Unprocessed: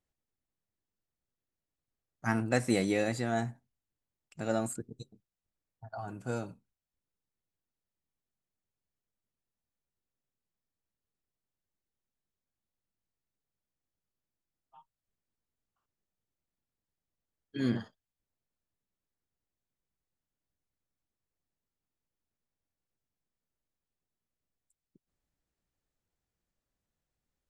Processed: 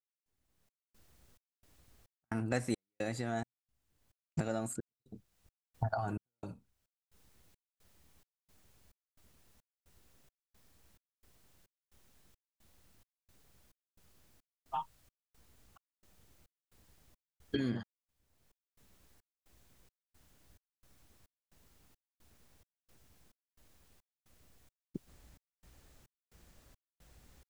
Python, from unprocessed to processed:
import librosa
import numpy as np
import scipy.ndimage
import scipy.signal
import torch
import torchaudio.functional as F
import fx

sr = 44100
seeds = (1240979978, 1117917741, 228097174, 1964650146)

y = fx.recorder_agc(x, sr, target_db=-21.0, rise_db_per_s=33.0, max_gain_db=30)
y = fx.peak_eq(y, sr, hz=63.0, db=8.0, octaves=0.77)
y = fx.step_gate(y, sr, bpm=175, pattern='...xxxxx', floor_db=-60.0, edge_ms=4.5)
y = F.gain(torch.from_numpy(y), -6.0).numpy()